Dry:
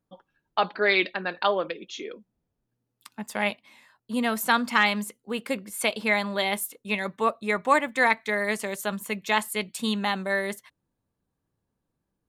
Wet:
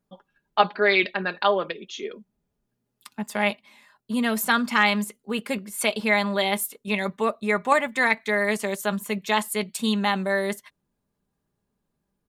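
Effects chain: comb 4.9 ms, depth 44%; in parallel at -2 dB: level quantiser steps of 17 dB; on the sum: gain -1 dB

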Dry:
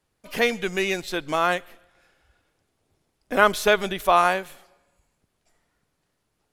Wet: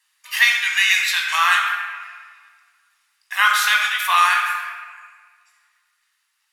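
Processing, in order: inverse Chebyshev high-pass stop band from 510 Hz, stop band 50 dB; vocal rider within 5 dB 0.5 s; reverb RT60 1.7 s, pre-delay 12 ms, DRR -0.5 dB; gain +6.5 dB

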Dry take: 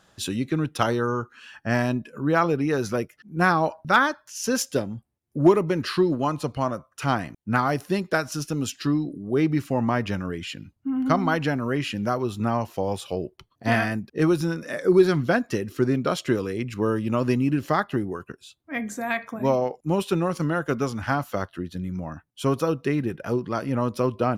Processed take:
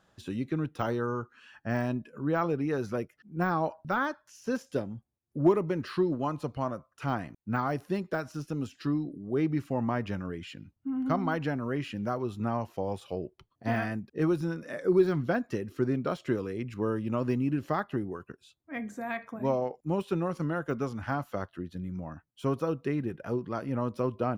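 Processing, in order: de-esser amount 80%; high shelf 2700 Hz -7.5 dB; gain -6 dB

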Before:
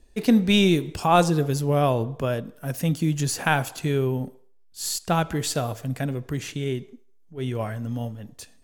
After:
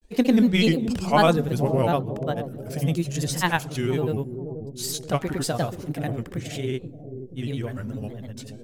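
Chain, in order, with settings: grains, pitch spread up and down by 3 st; on a send: analogue delay 0.48 s, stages 2048, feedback 52%, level -9 dB

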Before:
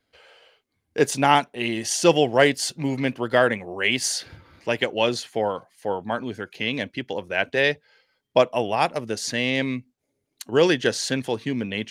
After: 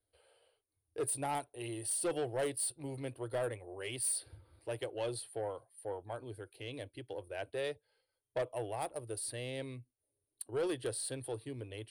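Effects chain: EQ curve 120 Hz 0 dB, 200 Hz -29 dB, 310 Hz -5 dB, 570 Hz -5 dB, 2100 Hz -16 dB, 4400 Hz -8 dB, 6500 Hz -24 dB, 9400 Hz +14 dB, 13000 Hz -8 dB; soft clip -21.5 dBFS, distortion -12 dB; gain -7.5 dB

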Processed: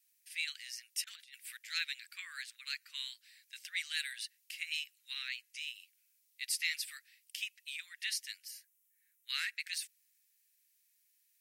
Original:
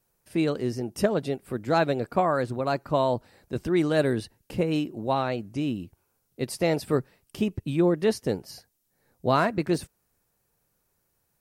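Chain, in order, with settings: steep high-pass 1900 Hz 48 dB/oct; 1.04–1.57 negative-ratio compressor -52 dBFS, ratio -0.5; 8.48–9.29 bell 4500 Hz -12.5 dB 0.86 oct; gain +1.5 dB

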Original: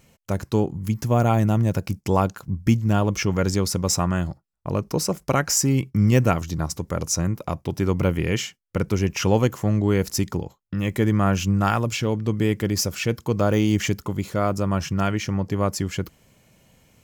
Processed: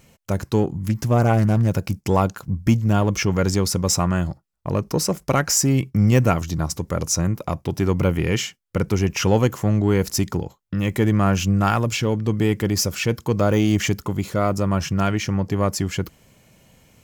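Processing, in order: in parallel at -7 dB: soft clip -21.5 dBFS, distortion -8 dB; 0.73–1.68 on the sum: Doppler distortion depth 0.26 ms

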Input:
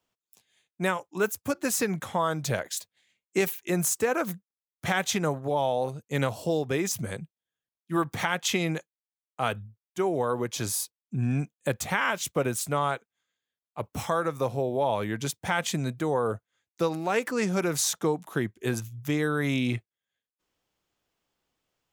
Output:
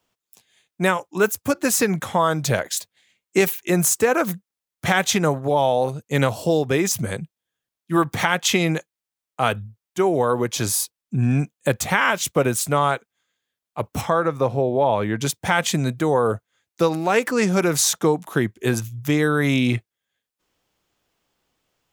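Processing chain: 14.01–15.21 LPF 2500 Hz 6 dB/oct; gain +7.5 dB

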